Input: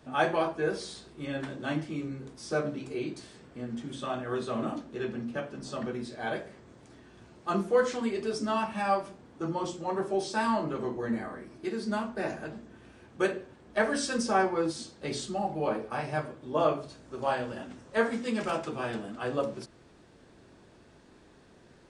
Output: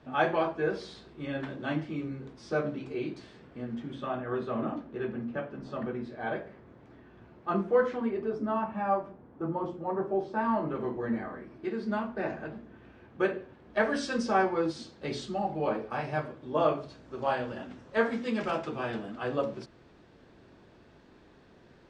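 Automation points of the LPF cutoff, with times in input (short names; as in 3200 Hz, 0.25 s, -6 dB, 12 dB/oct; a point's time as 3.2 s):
3.63 s 3600 Hz
4.11 s 2200 Hz
7.72 s 2200 Hz
8.38 s 1300 Hz
10.36 s 1300 Hz
10.82 s 2700 Hz
13.31 s 2700 Hz
13.95 s 4400 Hz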